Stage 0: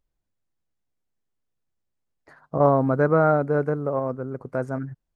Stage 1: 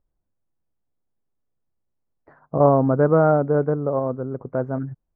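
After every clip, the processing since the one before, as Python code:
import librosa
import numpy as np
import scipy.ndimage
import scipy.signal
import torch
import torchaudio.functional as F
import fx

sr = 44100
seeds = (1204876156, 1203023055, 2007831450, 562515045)

y = scipy.signal.sosfilt(scipy.signal.butter(2, 1100.0, 'lowpass', fs=sr, output='sos'), x)
y = y * librosa.db_to_amplitude(3.0)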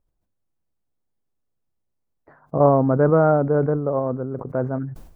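y = fx.sustainer(x, sr, db_per_s=80.0)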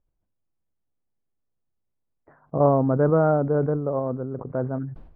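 y = fx.air_absorb(x, sr, metres=400.0)
y = y * librosa.db_to_amplitude(-2.0)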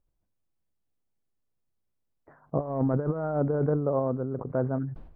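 y = fx.over_compress(x, sr, threshold_db=-22.0, ratio=-0.5)
y = y * librosa.db_to_amplitude(-3.0)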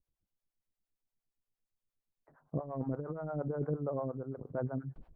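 y = fx.harmonic_tremolo(x, sr, hz=8.6, depth_pct=100, crossover_hz=460.0)
y = y * librosa.db_to_amplitude(-4.0)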